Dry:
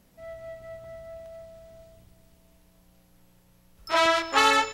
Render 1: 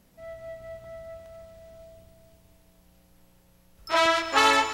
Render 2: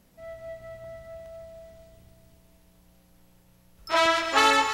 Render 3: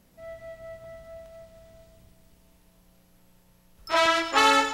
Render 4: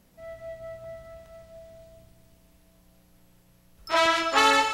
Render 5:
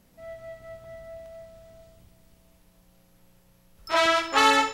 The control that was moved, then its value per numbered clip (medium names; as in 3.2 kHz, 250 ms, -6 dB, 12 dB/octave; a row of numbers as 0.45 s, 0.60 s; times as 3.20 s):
gated-style reverb, gate: 520 ms, 350 ms, 140 ms, 210 ms, 90 ms